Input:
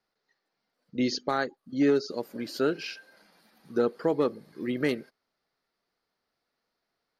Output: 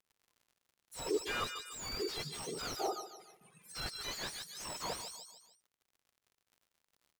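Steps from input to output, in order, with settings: spectrum inverted on a logarithmic axis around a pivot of 1.4 kHz; reverb removal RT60 1.5 s; gate with hold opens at -59 dBFS; tilt shelf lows -6 dB, about 840 Hz; reverse; compression 20:1, threshold -31 dBFS, peak gain reduction 16 dB; reverse; crackle 68 per s -59 dBFS; feedback delay 148 ms, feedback 42%, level -13 dB; slew-rate limiter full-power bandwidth 25 Hz; trim +3.5 dB

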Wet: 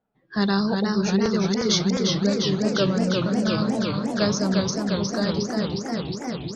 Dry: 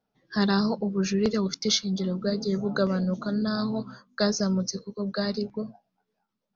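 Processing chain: level-controlled noise filter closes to 2.2 kHz, open at -20 dBFS; modulated delay 356 ms, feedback 78%, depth 140 cents, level -4 dB; trim +1.5 dB

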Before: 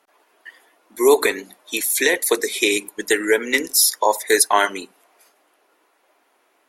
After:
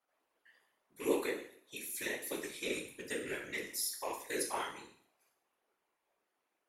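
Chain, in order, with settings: rattle on loud lows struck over -30 dBFS, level -13 dBFS; chord resonator C#2 minor, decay 0.57 s; whisper effect; trim -6.5 dB

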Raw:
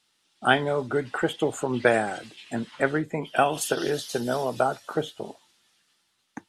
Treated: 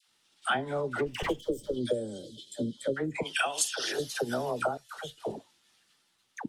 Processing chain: 0.98–1.76 s: comb filter that takes the minimum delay 0.37 ms; 3.15–3.92 s: frequency weighting ITU-R 468; transient shaper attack +4 dB, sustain -3 dB; phase dispersion lows, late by 83 ms, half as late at 840 Hz; 1.40–2.97 s: time-frequency box 610–3000 Hz -25 dB; 4.77–5.18 s: amplifier tone stack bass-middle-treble 10-0-10; compression 3:1, threshold -29 dBFS, peak gain reduction 13 dB

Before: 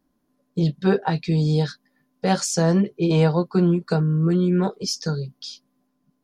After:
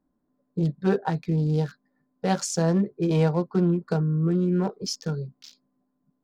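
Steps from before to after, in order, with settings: local Wiener filter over 15 samples; trim -3.5 dB

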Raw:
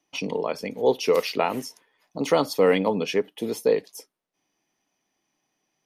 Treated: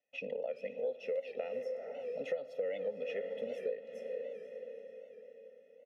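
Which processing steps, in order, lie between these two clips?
vowel filter e; bass shelf 120 Hz +8.5 dB; band-stop 4.7 kHz, Q 8.3; echo that smears into a reverb 466 ms, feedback 52%, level -11.5 dB; on a send at -18.5 dB: reverberation RT60 1.2 s, pre-delay 65 ms; on the sum: time-frequency box 1.63–1.95 s, 2.2–4.9 kHz -12 dB; peaking EQ 240 Hz +9.5 dB 0.5 oct; comb 1.5 ms, depth 87%; compression 6:1, threshold -31 dBFS, peak gain reduction 15.5 dB; warped record 78 rpm, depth 100 cents; trim -3 dB

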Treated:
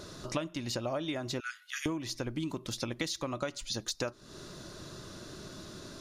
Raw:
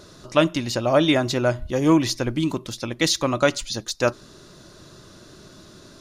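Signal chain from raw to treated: 1.40–1.86 s: steep high-pass 1.3 kHz 72 dB/octave; compression 16:1, threshold -31 dBFS, peak gain reduction 20.5 dB

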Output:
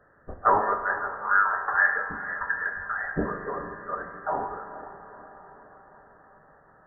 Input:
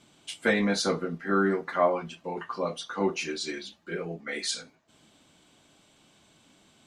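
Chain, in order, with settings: steep high-pass 1 kHz 72 dB/octave; echo that smears into a reverb 469 ms, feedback 58%, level -12.5 dB; spring tank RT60 1.3 s, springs 31 ms, chirp 35 ms, DRR 6 dB; frequency inversion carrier 2.8 kHz; trim +8.5 dB

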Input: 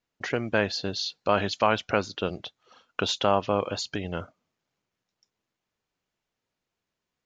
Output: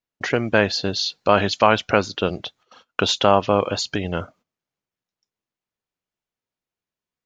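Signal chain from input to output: gate -57 dBFS, range -14 dB; trim +7 dB

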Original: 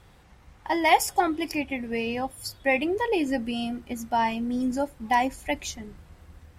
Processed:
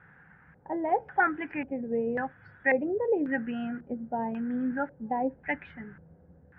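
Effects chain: cabinet simulation 120–2700 Hz, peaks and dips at 160 Hz +8 dB, 350 Hz -6 dB, 630 Hz -7 dB, 1.1 kHz -7 dB, 1.6 kHz +10 dB; LFO low-pass square 0.92 Hz 550–1600 Hz; trim -3 dB

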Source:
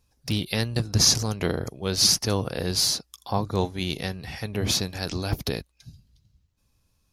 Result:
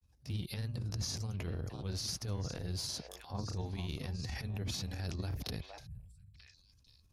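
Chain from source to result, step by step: peaking EQ 71 Hz +12.5 dB 2.1 oct; on a send: repeats whose band climbs or falls 466 ms, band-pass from 810 Hz, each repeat 1.4 oct, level -12 dB; on the sum: transient shaper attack -11 dB, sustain +7 dB; compression 6:1, threshold -27 dBFS, peak gain reduction 15 dB; granulator, spray 23 ms, pitch spread up and down by 0 st; time-frequency box 5.87–6.34 s, 220–7300 Hz -28 dB; trim -7.5 dB

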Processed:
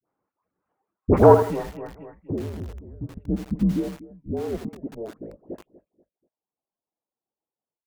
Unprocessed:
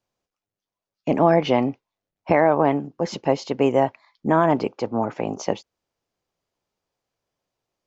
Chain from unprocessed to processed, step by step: level rider gain up to 14 dB; high-pass sweep 290 Hz -> 1.1 kHz, 2.73–6.43 s; in parallel at -3.5 dB: saturation -12 dBFS, distortion -7 dB; on the sum: low-pass sweep 1.4 kHz -> 230 Hz, 1.84–2.70 s; reverb removal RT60 0.76 s; phase dispersion highs, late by 80 ms, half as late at 1.1 kHz; on a send: feedback delay 242 ms, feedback 32%, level -17.5 dB; 1.34–3.16 s: on the sum: compression 12:1, threshold -18 dBFS, peak gain reduction 18 dB; mistuned SSB -220 Hz 400–2900 Hz; bit-crushed delay 80 ms, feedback 35%, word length 5-bit, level -9 dB; trim -4 dB

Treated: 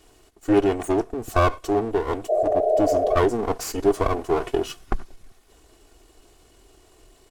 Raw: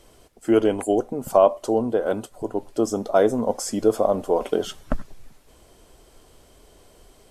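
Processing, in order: comb filter that takes the minimum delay 2.5 ms; spectral replace 2.32–3.12 s, 390–870 Hz after; pitch shift -1.5 st

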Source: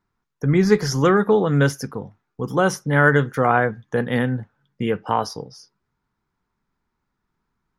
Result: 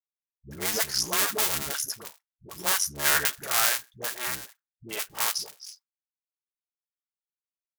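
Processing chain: cycle switcher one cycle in 2, muted; pre-emphasis filter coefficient 0.97; expander -55 dBFS; comb of notches 250 Hz; phase dispersion highs, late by 94 ms, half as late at 370 Hz; level rider gain up to 7 dB; warped record 45 rpm, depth 100 cents; trim +2 dB

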